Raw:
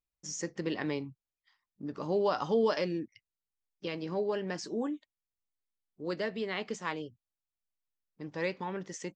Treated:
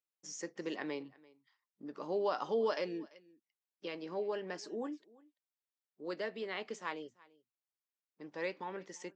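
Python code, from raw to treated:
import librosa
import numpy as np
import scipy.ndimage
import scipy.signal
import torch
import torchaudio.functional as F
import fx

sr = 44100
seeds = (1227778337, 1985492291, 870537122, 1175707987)

y = scipy.signal.sosfilt(scipy.signal.butter(2, 290.0, 'highpass', fs=sr, output='sos'), x)
y = fx.high_shelf(y, sr, hz=5400.0, db=-4.5)
y = y + 10.0 ** (-23.5 / 20.0) * np.pad(y, (int(340 * sr / 1000.0), 0))[:len(y)]
y = y * librosa.db_to_amplitude(-4.0)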